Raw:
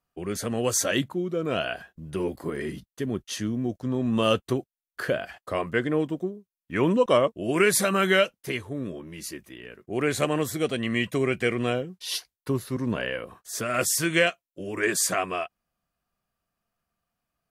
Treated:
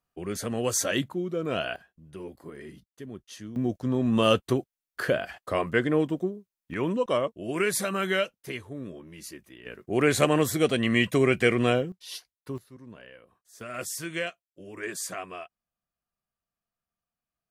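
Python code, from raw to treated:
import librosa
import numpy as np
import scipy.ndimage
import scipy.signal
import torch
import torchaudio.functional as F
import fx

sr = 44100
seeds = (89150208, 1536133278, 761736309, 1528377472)

y = fx.gain(x, sr, db=fx.steps((0.0, -2.0), (1.76, -11.5), (3.56, 1.0), (6.74, -5.5), (9.66, 3.0), (11.92, -9.0), (12.58, -19.0), (13.61, -10.0)))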